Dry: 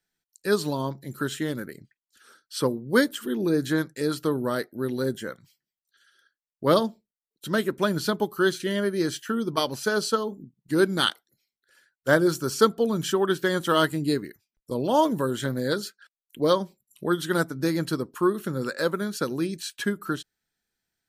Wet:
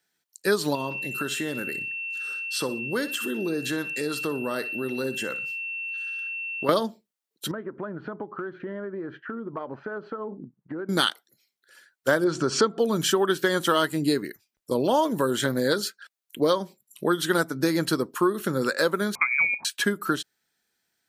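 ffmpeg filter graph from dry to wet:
-filter_complex "[0:a]asettb=1/sr,asplit=3[s0][s1][s2];[s0]atrim=end=0.754[s3];[s1]atrim=start=0.75:end=6.69,asetpts=PTS-STARTPTS,afade=t=in:d=0.004:c=qsin,afade=t=out:st=5.936:d=0.004:c=qsin,aeval=exprs='val(0)+0.0158*sin(2*PI*2700*n/s)':c=same,acompressor=threshold=0.0251:ratio=3:attack=3.2:release=140:knee=1:detection=peak,aecho=1:1:61|122|183:0.188|0.0603|0.0193,atrim=end_sample=261954[s4];[s2]atrim=start=6.686[s5];[s3][s4]acrossfade=d=0.004:c1=hsin:c2=qsin[s6];[s6][s5]acrossfade=d=0.004:c1=qsin:c2=hsin,asettb=1/sr,asplit=3[s7][s8][s9];[s7]atrim=end=7.514[s10];[s8]atrim=start=7.51:end=10.89,asetpts=PTS-STARTPTS,afade=t=in:d=0.004:c=qsin,afade=t=out:st=3.376:d=0.004:c=qsin,lowpass=f=1600:w=0.5412,lowpass=f=1600:w=1.3066,acompressor=threshold=0.02:ratio=20:attack=3.2:release=140:knee=1:detection=peak[s11];[s9]atrim=start=10.886[s12];[s10][s11]acrossfade=d=0.004:c1=hsin:c2=qsin[s13];[s13][s12]acrossfade=d=0.004:c1=qsin:c2=hsin,asettb=1/sr,asplit=3[s14][s15][s16];[s14]atrim=end=12.244[s17];[s15]atrim=start=12.24:end=12.79,asetpts=PTS-STARTPTS,afade=t=in:d=0.004:c=qsin,afade=t=out:st=0.546:d=0.004:c=qsin,lowpass=f=8300:w=0.5412,lowpass=f=8300:w=1.3066,aemphasis=mode=reproduction:type=75kf,acompressor=mode=upward:threshold=0.1:ratio=2.5:attack=3.2:release=140:knee=2.83:detection=peak[s18];[s16]atrim=start=12.786[s19];[s17][s18]acrossfade=d=0.004:c1=hsin:c2=qsin[s20];[s20][s19]acrossfade=d=0.004:c1=qsin:c2=hsin,asettb=1/sr,asplit=3[s21][s22][s23];[s21]atrim=end=19.154[s24];[s22]atrim=start=19.15:end=19.65,asetpts=PTS-STARTPTS,afade=t=in:d=0.004:c=qsin,afade=t=out:st=0.496:d=0.004:c=qsin,lowpass=f=2200:t=q:w=0.5098,lowpass=f=2200:t=q:w=0.6013,lowpass=f=2200:t=q:w=0.9,lowpass=f=2200:t=q:w=2.563,afreqshift=-2600,lowshelf=f=200:g=11[s25];[s23]atrim=start=19.646[s26];[s24][s25]acrossfade=d=0.004:c1=hsin:c2=qsin[s27];[s27][s26]acrossfade=d=0.004:c1=qsin:c2=hsin,highpass=f=270:p=1,acompressor=threshold=0.0501:ratio=4,volume=2.24"

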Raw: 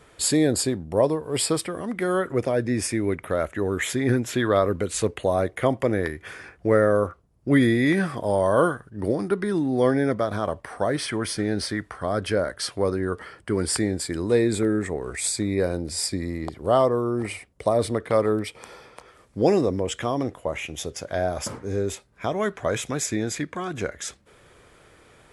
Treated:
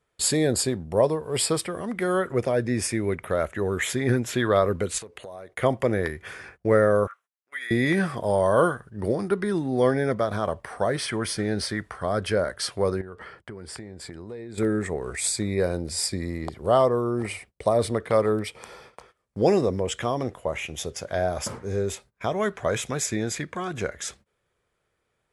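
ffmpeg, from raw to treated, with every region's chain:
-filter_complex "[0:a]asettb=1/sr,asplit=3[s0][s1][s2];[s0]atrim=end=4.984[s3];[s1]atrim=start=4.98:end=5.55,asetpts=PTS-STARTPTS,afade=t=in:d=0.004:c=qsin,afade=t=out:st=0.566:d=0.004:c=qsin,acompressor=threshold=0.0178:ratio=6:attack=3.2:release=140:knee=1:detection=peak,lowshelf=f=220:g=-9[s4];[s2]atrim=start=5.546[s5];[s3][s4]acrossfade=d=0.004:c1=hsin:c2=qsin[s6];[s6][s5]acrossfade=d=0.004:c1=qsin:c2=hsin,asettb=1/sr,asplit=3[s7][s8][s9];[s7]atrim=end=7.074[s10];[s8]atrim=start=7.07:end=7.71,asetpts=PTS-STARTPTS,afade=t=in:d=0.004:c=qsin,afade=t=out:st=0.636:d=0.004:c=qsin,equalizer=f=4600:t=o:w=0.25:g=-11.5,acompressor=threshold=0.0794:ratio=20:attack=3.2:release=140:knee=1:detection=peak,highpass=f=1600:t=q:w=1.7[s11];[s9]atrim=start=7.706[s12];[s10][s11]acrossfade=d=0.004:c1=hsin:c2=qsin[s13];[s13][s12]acrossfade=d=0.004:c1=qsin:c2=hsin,asettb=1/sr,asplit=3[s14][s15][s16];[s14]atrim=end=13.014[s17];[s15]atrim=start=13.01:end=14.58,asetpts=PTS-STARTPTS,afade=t=in:d=0.004:c=qsin,afade=t=out:st=1.566:d=0.004:c=qsin,lowpass=f=2900:p=1,acompressor=threshold=0.02:ratio=8:attack=3.2:release=140:knee=1:detection=peak[s18];[s16]atrim=start=14.576[s19];[s17][s18]acrossfade=d=0.004:c1=hsin:c2=qsin[s20];[s20][s19]acrossfade=d=0.004:c1=qsin:c2=hsin,equalizer=f=290:w=6.6:g=-8.5,agate=range=0.0794:threshold=0.00398:ratio=16:detection=peak"

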